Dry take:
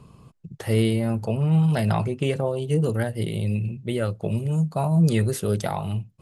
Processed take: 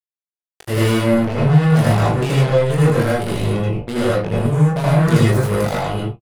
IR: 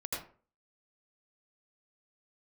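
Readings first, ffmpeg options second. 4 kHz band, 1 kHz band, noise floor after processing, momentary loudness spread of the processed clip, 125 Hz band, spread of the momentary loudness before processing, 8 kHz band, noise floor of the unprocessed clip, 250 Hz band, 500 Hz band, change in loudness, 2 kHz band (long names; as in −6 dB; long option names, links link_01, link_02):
+8.5 dB, +9.5 dB, below −85 dBFS, 7 LU, +7.0 dB, 7 LU, +6.0 dB, −53 dBFS, +6.5 dB, +8.5 dB, +7.0 dB, +11.0 dB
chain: -filter_complex "[0:a]acrusher=bits=3:mix=0:aa=0.5,aecho=1:1:21|38:0.473|0.282[link_01];[1:a]atrim=start_sample=2205,afade=type=out:start_time=0.21:duration=0.01,atrim=end_sample=9702[link_02];[link_01][link_02]afir=irnorm=-1:irlink=0,volume=3.5dB"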